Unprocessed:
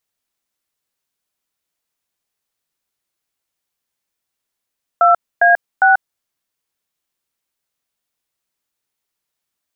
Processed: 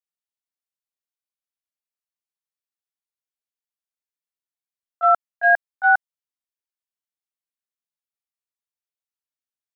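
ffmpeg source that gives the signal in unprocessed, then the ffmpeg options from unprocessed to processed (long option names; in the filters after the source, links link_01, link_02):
-f lavfi -i "aevalsrc='0.316*clip(min(mod(t,0.404),0.138-mod(t,0.404))/0.002,0,1)*(eq(floor(t/0.404),0)*(sin(2*PI*697*mod(t,0.404))+sin(2*PI*1336*mod(t,0.404)))+eq(floor(t/0.404),1)*(sin(2*PI*697*mod(t,0.404))+sin(2*PI*1633*mod(t,0.404)))+eq(floor(t/0.404),2)*(sin(2*PI*770*mod(t,0.404))+sin(2*PI*1477*mod(t,0.404))))':duration=1.212:sample_rate=44100"
-af "agate=range=-18dB:threshold=-10dB:ratio=16:detection=peak,lowshelf=frequency=390:gain=-11"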